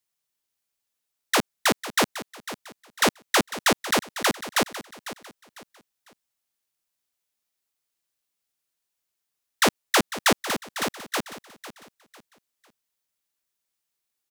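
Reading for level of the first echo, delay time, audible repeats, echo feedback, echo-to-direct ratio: -14.0 dB, 0.5 s, 3, 32%, -13.5 dB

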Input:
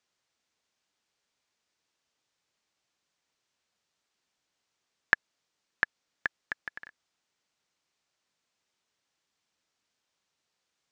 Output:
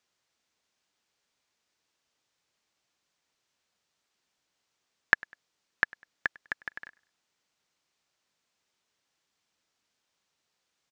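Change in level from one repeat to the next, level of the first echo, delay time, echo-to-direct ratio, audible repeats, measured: -9.0 dB, -24.0 dB, 0.1 s, -23.5 dB, 2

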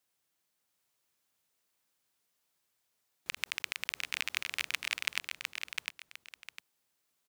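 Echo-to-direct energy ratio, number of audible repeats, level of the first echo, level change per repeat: -3.5 dB, 2, -4.0 dB, -11.5 dB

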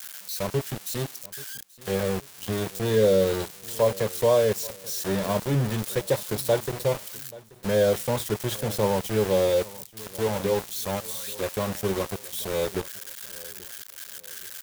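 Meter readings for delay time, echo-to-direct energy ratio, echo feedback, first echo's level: 0.832 s, -20.5 dB, 38%, -21.0 dB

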